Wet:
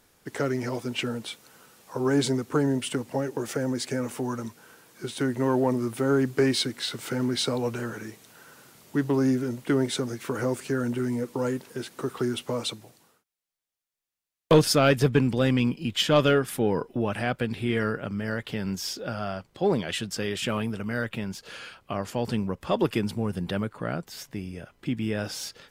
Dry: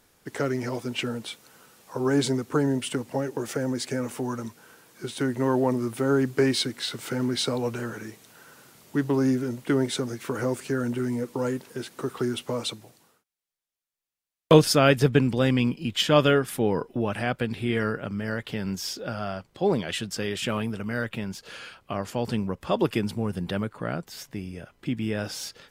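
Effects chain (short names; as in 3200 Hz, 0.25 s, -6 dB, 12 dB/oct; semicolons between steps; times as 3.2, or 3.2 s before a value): soft clip -8.5 dBFS, distortion -19 dB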